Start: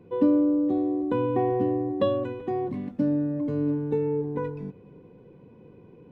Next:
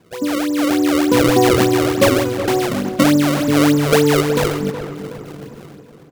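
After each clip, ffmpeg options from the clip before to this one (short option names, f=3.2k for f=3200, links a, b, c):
-filter_complex "[0:a]dynaudnorm=f=110:g=11:m=16dB,acrusher=samples=30:mix=1:aa=0.000001:lfo=1:lforange=48:lforate=3.4,asplit=2[a][b];[b]adelay=370,lowpass=f=2.1k:p=1,volume=-10dB,asplit=2[c][d];[d]adelay=370,lowpass=f=2.1k:p=1,volume=0.45,asplit=2[e][f];[f]adelay=370,lowpass=f=2.1k:p=1,volume=0.45,asplit=2[g][h];[h]adelay=370,lowpass=f=2.1k:p=1,volume=0.45,asplit=2[i][j];[j]adelay=370,lowpass=f=2.1k:p=1,volume=0.45[k];[a][c][e][g][i][k]amix=inputs=6:normalize=0,volume=-1dB"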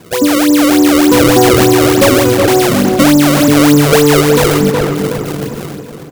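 -af "highshelf=f=6k:g=7.5,asoftclip=type=tanh:threshold=-9.5dB,alimiter=level_in=15dB:limit=-1dB:release=50:level=0:latency=1,volume=-1dB"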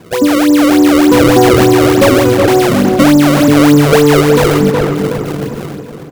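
-af "highshelf=f=3.8k:g=-7,volume=1dB"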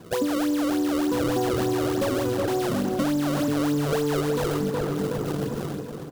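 -af "acrusher=bits=5:mode=log:mix=0:aa=0.000001,equalizer=f=2.2k:w=2.8:g=-6,acompressor=threshold=-15dB:ratio=6,volume=-7.5dB"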